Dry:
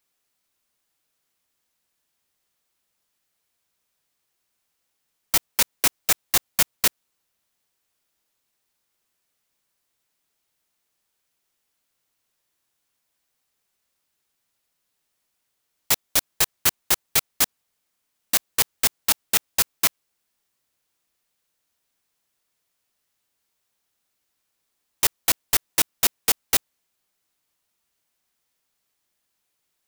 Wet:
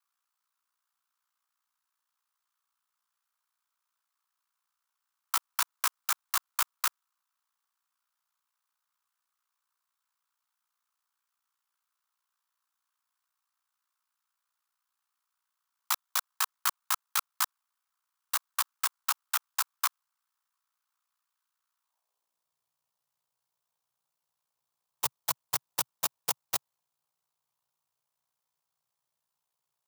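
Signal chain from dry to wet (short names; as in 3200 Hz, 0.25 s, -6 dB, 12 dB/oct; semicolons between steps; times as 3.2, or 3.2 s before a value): ring modulator 30 Hz; high-pass sweep 1300 Hz -> 130 Hz, 21.82–22.45; ten-band EQ 250 Hz -11 dB, 1000 Hz +10 dB, 2000 Hz -6 dB; gain -7 dB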